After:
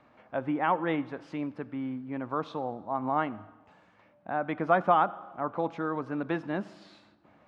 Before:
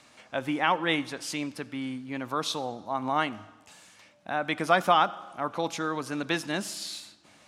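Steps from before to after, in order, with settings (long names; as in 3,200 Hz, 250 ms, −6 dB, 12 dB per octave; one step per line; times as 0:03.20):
low-pass filter 1,300 Hz 12 dB per octave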